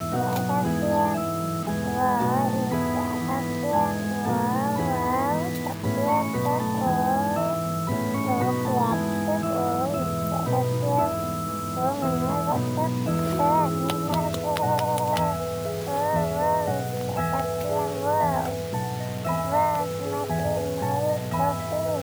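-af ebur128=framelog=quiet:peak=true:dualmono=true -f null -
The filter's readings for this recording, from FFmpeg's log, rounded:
Integrated loudness:
  I:         -22.1 LUFS
  Threshold: -32.1 LUFS
Loudness range:
  LRA:         1.5 LU
  Threshold: -42.1 LUFS
  LRA low:   -22.9 LUFS
  LRA high:  -21.4 LUFS
True peak:
  Peak:       -9.1 dBFS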